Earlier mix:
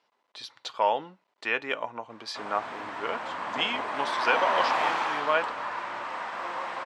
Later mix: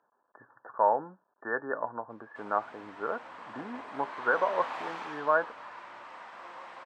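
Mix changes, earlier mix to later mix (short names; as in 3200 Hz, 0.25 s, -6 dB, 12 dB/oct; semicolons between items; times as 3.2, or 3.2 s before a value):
speech: add brick-wall FIR low-pass 1800 Hz; background -12.0 dB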